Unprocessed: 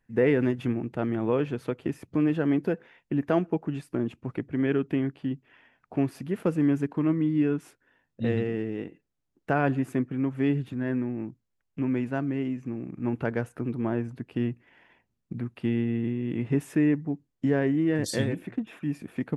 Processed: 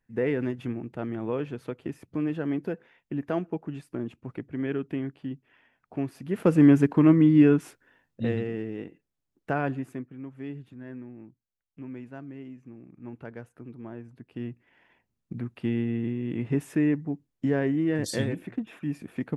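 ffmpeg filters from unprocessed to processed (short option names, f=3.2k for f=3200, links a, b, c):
-af "volume=18.5dB,afade=t=in:st=6.21:d=0.4:silence=0.266073,afade=t=out:st=7.47:d=0.91:silence=0.334965,afade=t=out:st=9.53:d=0.57:silence=0.316228,afade=t=in:st=14.04:d=1.32:silence=0.266073"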